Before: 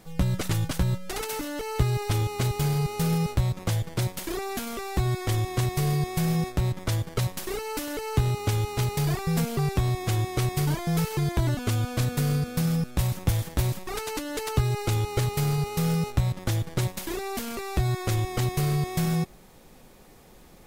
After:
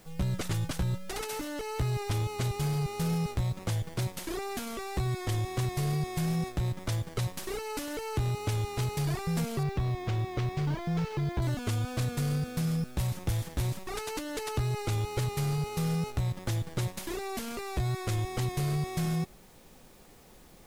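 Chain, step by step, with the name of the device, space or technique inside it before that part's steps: 9.63–11.42 s: distance through air 150 m; compact cassette (saturation -18 dBFS, distortion -17 dB; low-pass 13 kHz 12 dB/octave; wow and flutter 26 cents; white noise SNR 32 dB); trim -3.5 dB

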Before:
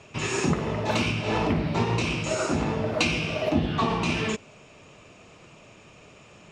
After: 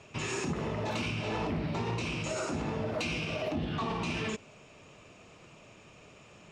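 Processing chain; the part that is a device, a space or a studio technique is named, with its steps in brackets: soft clipper into limiter (saturation -12.5 dBFS, distortion -26 dB; peak limiter -21.5 dBFS, peak gain reduction 7.5 dB); trim -4 dB

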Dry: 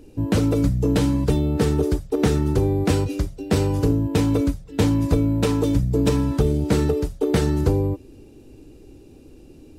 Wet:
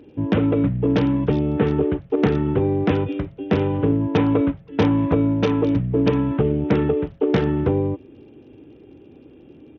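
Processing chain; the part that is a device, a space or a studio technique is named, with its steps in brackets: 3.99–5.34 s: dynamic bell 1 kHz, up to +4 dB, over -36 dBFS, Q 0.87; Bluetooth headset (high-pass 120 Hz 12 dB/octave; resampled via 8 kHz; trim +2 dB; SBC 64 kbps 48 kHz)

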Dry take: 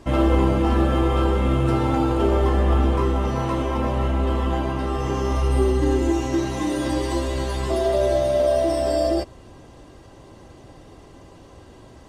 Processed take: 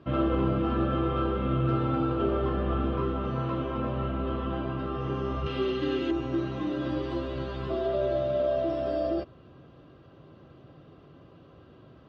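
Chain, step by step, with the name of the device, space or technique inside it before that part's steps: 5.46–6.11 s: frequency weighting D; guitar cabinet (cabinet simulation 87–3500 Hz, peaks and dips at 150 Hz +8 dB, 880 Hz -10 dB, 1.3 kHz +6 dB, 2 kHz -8 dB); trim -6.5 dB

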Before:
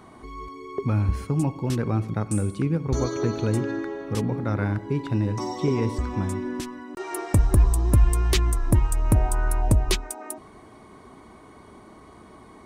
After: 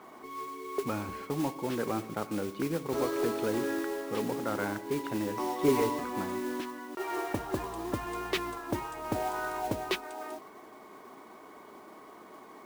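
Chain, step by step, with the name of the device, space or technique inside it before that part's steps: carbon microphone (band-pass 340–3200 Hz; saturation -19.5 dBFS, distortion -19 dB; modulation noise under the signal 12 dB); treble shelf 5.5 kHz -6 dB; 5.64–6.04 s: comb 7 ms, depth 89%

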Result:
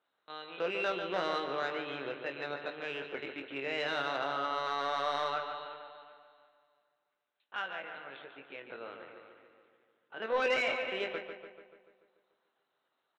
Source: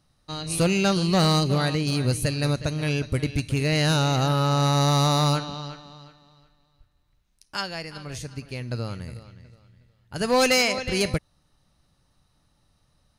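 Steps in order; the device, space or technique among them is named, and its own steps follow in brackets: high-pass 240 Hz 12 dB/octave; talking toy (LPC vocoder at 8 kHz pitch kept; high-pass 380 Hz 12 dB/octave; peaking EQ 1.5 kHz +5 dB 0.32 oct; saturation -15.5 dBFS, distortion -18 dB); doubling 22 ms -8 dB; filtered feedback delay 145 ms, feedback 59%, low-pass 3.7 kHz, level -7 dB; trim -7.5 dB

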